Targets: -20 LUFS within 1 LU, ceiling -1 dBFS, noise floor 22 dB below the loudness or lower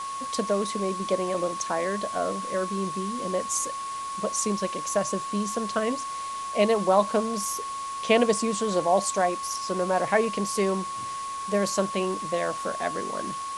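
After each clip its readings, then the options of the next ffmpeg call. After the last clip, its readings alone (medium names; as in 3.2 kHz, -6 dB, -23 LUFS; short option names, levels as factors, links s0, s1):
steady tone 1.1 kHz; tone level -31 dBFS; noise floor -34 dBFS; noise floor target -49 dBFS; loudness -27.0 LUFS; peak level -6.5 dBFS; loudness target -20.0 LUFS
-> -af "bandreject=f=1100:w=30"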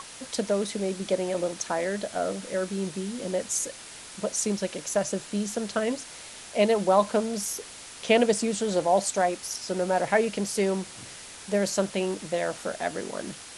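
steady tone not found; noise floor -44 dBFS; noise floor target -50 dBFS
-> -af "afftdn=nr=6:nf=-44"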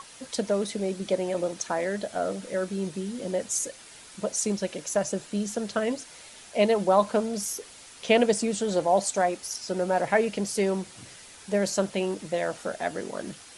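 noise floor -48 dBFS; noise floor target -50 dBFS
-> -af "afftdn=nr=6:nf=-48"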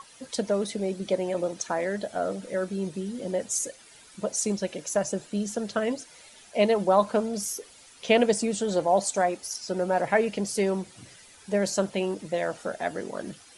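noise floor -52 dBFS; loudness -27.5 LUFS; peak level -6.5 dBFS; loudness target -20.0 LUFS
-> -af "volume=2.37,alimiter=limit=0.891:level=0:latency=1"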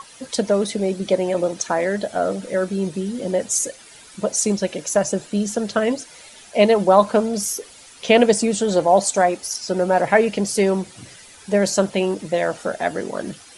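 loudness -20.5 LUFS; peak level -1.0 dBFS; noise floor -45 dBFS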